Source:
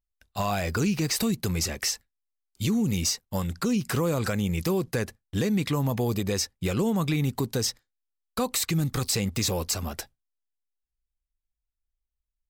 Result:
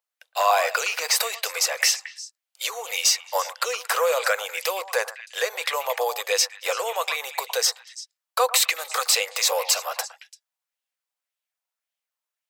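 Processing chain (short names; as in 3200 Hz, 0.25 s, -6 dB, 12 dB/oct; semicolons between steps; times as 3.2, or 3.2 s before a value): Chebyshev high-pass 490 Hz, order 6; delay with a stepping band-pass 0.113 s, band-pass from 920 Hz, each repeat 1.4 oct, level -9.5 dB; LFO bell 1.8 Hz 900–3100 Hz +6 dB; gain +7.5 dB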